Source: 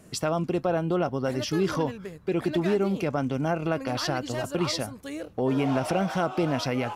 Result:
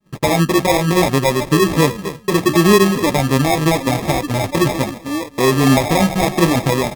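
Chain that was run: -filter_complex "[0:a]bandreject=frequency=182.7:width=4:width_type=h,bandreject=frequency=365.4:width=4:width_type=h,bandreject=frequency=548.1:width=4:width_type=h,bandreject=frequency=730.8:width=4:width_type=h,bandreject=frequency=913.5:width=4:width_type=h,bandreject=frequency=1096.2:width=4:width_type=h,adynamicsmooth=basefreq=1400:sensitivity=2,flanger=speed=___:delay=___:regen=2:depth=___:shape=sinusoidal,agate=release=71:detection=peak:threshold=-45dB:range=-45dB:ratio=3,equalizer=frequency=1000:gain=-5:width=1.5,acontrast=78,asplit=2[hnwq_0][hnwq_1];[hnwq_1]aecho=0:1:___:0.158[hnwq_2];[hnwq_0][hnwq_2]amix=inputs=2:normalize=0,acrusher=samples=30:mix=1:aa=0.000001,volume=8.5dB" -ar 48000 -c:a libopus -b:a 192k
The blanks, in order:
0.73, 5.2, 10, 257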